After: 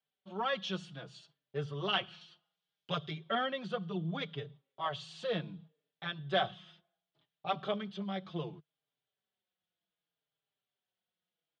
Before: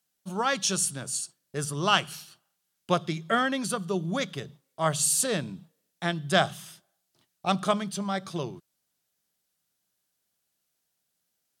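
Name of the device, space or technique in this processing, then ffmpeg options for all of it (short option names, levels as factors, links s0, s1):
barber-pole flanger into a guitar amplifier: -filter_complex "[0:a]asplit=2[s0][s1];[s1]adelay=4.6,afreqshift=-0.67[s2];[s0][s2]amix=inputs=2:normalize=1,asoftclip=type=tanh:threshold=0.15,highpass=85,equalizer=f=150:t=q:w=4:g=4,equalizer=f=250:t=q:w=4:g=-5,equalizer=f=460:t=q:w=4:g=5,equalizer=f=720:t=q:w=4:g=3,equalizer=f=3300:t=q:w=4:g=7,lowpass=f=3600:w=0.5412,lowpass=f=3600:w=1.3066,asettb=1/sr,asplit=3[s3][s4][s5];[s3]atrim=end=2.214[s6];[s4]atrim=start=2.21:end=3.11,asetpts=PTS-STARTPTS,afade=t=in:d=0.004:c=qsin,afade=t=out:st=0.896:d=0.004:c=qsin,bass=f=250:g=0,treble=f=4000:g=11[s7];[s5]atrim=start=3.106[s8];[s6][s7]acrossfade=d=0.004:c1=hsin:c2=qsin[s9];[s9][s8]acrossfade=d=0.004:c1=qsin:c2=hsin,volume=0.531"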